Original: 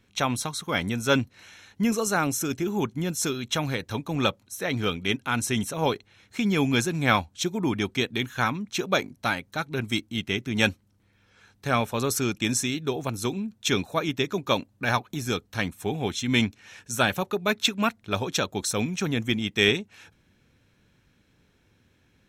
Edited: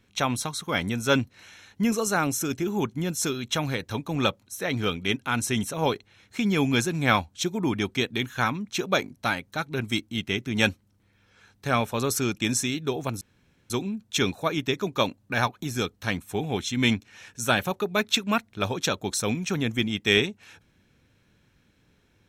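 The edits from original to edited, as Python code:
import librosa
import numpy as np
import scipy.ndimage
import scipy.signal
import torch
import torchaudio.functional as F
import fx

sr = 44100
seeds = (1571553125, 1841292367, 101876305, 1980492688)

y = fx.edit(x, sr, fx.insert_room_tone(at_s=13.21, length_s=0.49), tone=tone)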